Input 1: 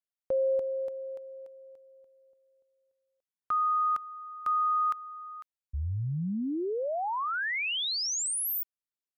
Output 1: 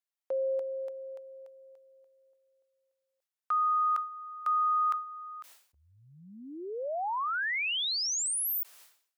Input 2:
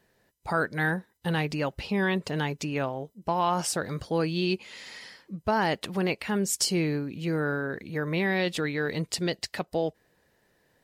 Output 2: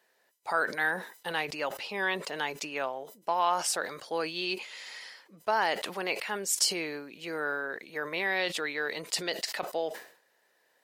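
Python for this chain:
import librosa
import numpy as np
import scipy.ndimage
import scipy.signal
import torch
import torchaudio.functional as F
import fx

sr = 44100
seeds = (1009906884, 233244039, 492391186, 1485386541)

y = scipy.signal.sosfilt(scipy.signal.butter(2, 570.0, 'highpass', fs=sr, output='sos'), x)
y = fx.sustainer(y, sr, db_per_s=110.0)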